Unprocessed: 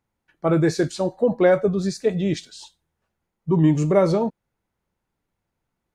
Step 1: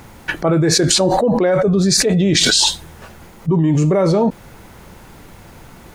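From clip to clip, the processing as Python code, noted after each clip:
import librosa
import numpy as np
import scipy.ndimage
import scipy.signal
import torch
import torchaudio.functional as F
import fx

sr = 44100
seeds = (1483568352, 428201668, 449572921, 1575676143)

y = fx.env_flatten(x, sr, amount_pct=100)
y = y * 10.0 ** (-1.0 / 20.0)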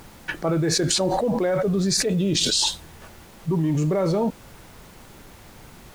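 y = fx.spec_box(x, sr, start_s=2.1, length_s=0.52, low_hz=640.0, high_hz=2400.0, gain_db=-11)
y = fx.dmg_noise_colour(y, sr, seeds[0], colour='pink', level_db=-42.0)
y = y * 10.0 ** (-7.5 / 20.0)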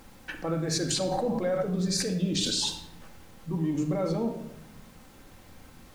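y = fx.room_shoebox(x, sr, seeds[1], volume_m3=3300.0, walls='furnished', distance_m=2.1)
y = y * 10.0 ** (-8.5 / 20.0)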